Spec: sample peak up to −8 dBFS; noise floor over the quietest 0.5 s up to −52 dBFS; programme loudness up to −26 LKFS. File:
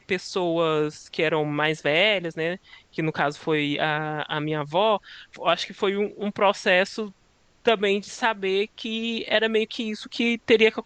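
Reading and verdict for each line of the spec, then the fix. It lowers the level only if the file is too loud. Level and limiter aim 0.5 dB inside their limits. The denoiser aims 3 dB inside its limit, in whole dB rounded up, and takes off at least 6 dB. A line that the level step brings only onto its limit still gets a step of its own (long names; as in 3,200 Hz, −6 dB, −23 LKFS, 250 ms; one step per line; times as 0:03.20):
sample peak −5.0 dBFS: out of spec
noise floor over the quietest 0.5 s −61 dBFS: in spec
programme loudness −24.0 LKFS: out of spec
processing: level −2.5 dB
brickwall limiter −8.5 dBFS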